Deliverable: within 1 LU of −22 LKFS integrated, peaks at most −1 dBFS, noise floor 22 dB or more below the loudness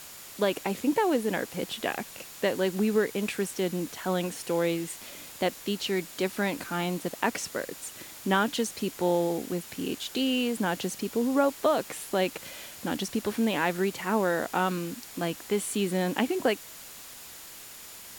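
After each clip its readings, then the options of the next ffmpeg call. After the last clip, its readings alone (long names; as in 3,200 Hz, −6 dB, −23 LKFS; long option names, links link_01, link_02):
interfering tone 7,000 Hz; level of the tone −55 dBFS; background noise floor −46 dBFS; target noise floor −51 dBFS; integrated loudness −29.0 LKFS; sample peak −9.0 dBFS; target loudness −22.0 LKFS
→ -af "bandreject=frequency=7000:width=30"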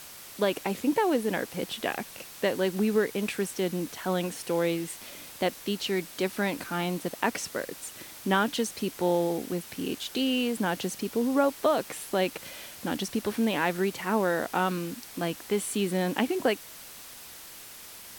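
interfering tone none found; background noise floor −46 dBFS; target noise floor −51 dBFS
→ -af "afftdn=noise_reduction=6:noise_floor=-46"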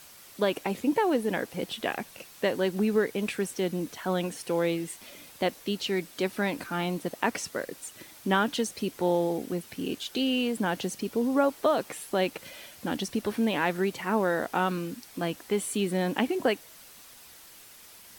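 background noise floor −51 dBFS; target noise floor −52 dBFS
→ -af "afftdn=noise_reduction=6:noise_floor=-51"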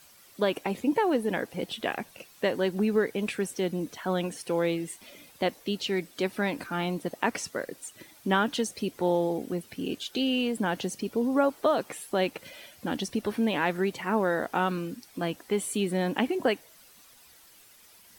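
background noise floor −56 dBFS; integrated loudness −29.5 LKFS; sample peak −9.5 dBFS; target loudness −22.0 LKFS
→ -af "volume=7.5dB"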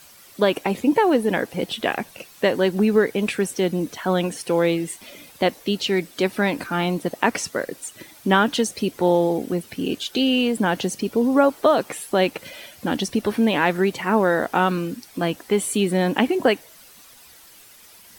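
integrated loudness −22.0 LKFS; sample peak −2.0 dBFS; background noise floor −48 dBFS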